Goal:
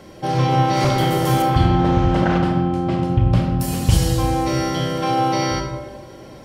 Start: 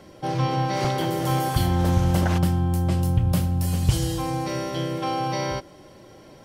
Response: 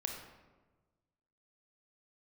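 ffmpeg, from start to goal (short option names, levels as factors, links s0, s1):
-filter_complex "[0:a]asettb=1/sr,asplit=3[s0][s1][s2];[s0]atrim=end=1.424[s3];[s1]atrim=start=1.42:end=3.6,asetpts=PTS-STARTPTS,afade=t=in:d=0.004:c=qsin,afade=t=out:st=2.176:d=0.004:c=qsin,lowpass=3200[s4];[s2]atrim=start=3.596[s5];[s3][s4]acrossfade=d=0.004:c1=hsin:c2=qsin[s6];[s6][s5]acrossfade=d=0.004:c1=qsin:c2=hsin[s7];[1:a]atrim=start_sample=2205[s8];[s7][s8]afir=irnorm=-1:irlink=0,volume=2"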